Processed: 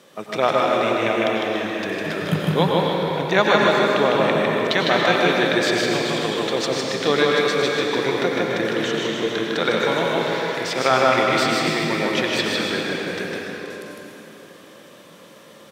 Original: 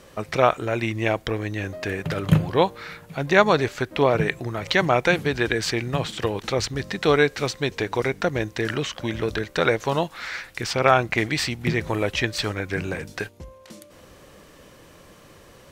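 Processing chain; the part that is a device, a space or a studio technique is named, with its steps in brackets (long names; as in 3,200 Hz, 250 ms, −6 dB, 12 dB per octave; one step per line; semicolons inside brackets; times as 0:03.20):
stadium PA (high-pass filter 160 Hz 24 dB per octave; parametric band 3,500 Hz +7 dB 0.22 octaves; loudspeakers that aren't time-aligned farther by 53 metres −3 dB, 99 metres −11 dB; convolution reverb RT60 3.5 s, pre-delay 86 ms, DRR −1 dB)
level −2 dB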